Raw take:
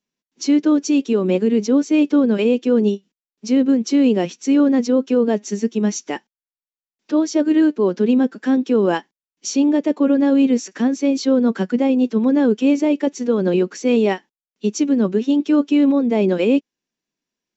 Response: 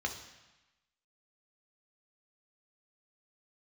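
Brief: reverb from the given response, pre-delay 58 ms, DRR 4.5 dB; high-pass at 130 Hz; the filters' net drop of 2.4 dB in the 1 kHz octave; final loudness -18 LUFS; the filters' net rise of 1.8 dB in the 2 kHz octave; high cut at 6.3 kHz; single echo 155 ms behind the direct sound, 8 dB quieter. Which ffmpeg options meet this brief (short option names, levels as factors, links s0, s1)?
-filter_complex "[0:a]highpass=130,lowpass=6300,equalizer=f=1000:t=o:g=-4,equalizer=f=2000:t=o:g=3.5,aecho=1:1:155:0.398,asplit=2[s0][s1];[1:a]atrim=start_sample=2205,adelay=58[s2];[s1][s2]afir=irnorm=-1:irlink=0,volume=0.376[s3];[s0][s3]amix=inputs=2:normalize=0,volume=0.794"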